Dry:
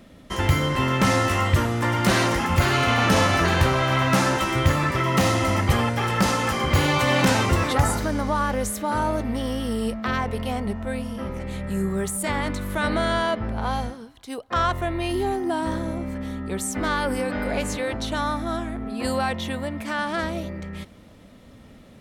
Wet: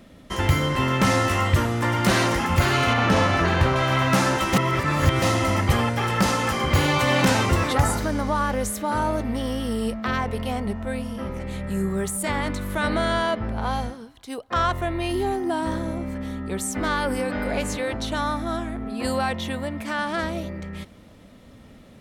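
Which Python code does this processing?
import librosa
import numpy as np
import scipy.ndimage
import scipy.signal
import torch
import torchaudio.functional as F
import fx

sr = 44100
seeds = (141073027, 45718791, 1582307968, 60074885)

y = fx.lowpass(x, sr, hz=3200.0, slope=6, at=(2.93, 3.76))
y = fx.edit(y, sr, fx.reverse_span(start_s=4.53, length_s=0.69), tone=tone)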